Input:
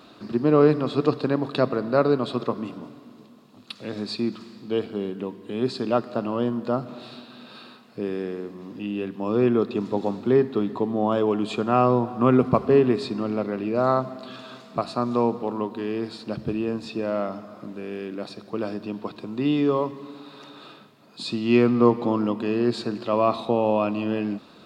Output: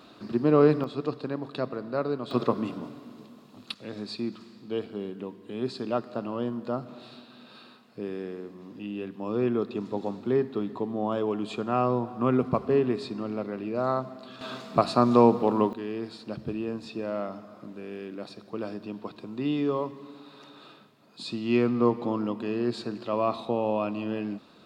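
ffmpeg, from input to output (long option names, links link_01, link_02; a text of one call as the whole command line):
ffmpeg -i in.wav -af "asetnsamples=nb_out_samples=441:pad=0,asendcmd='0.84 volume volume -9dB;2.31 volume volume 1dB;3.74 volume volume -6dB;14.41 volume volume 4dB;15.73 volume volume -5.5dB',volume=-2.5dB" out.wav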